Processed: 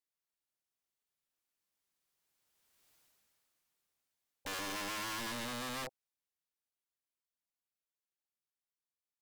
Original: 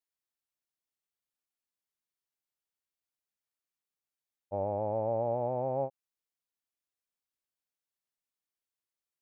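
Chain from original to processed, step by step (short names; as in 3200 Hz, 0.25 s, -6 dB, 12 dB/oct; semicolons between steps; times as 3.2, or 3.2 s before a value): Doppler pass-by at 2.93, 13 m/s, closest 2.5 m; in parallel at 0 dB: limiter -51.5 dBFS, peak gain reduction 11 dB; on the sum: wrapped overs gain 51 dB; Doppler distortion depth 0.11 ms; gain +15.5 dB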